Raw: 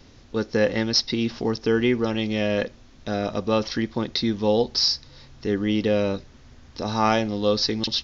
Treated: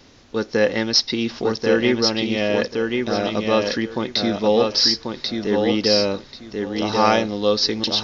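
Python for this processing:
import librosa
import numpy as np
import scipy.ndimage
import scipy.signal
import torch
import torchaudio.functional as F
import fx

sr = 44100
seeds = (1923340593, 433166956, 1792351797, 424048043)

y = fx.low_shelf(x, sr, hz=150.0, db=-11.0)
y = fx.echo_feedback(y, sr, ms=1088, feedback_pct=21, wet_db=-4.0)
y = y * 10.0 ** (4.0 / 20.0)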